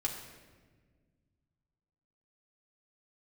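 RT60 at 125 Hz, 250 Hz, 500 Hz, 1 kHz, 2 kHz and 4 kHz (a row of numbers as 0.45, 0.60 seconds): 2.9, 2.4, 1.8, 1.2, 1.3, 1.0 seconds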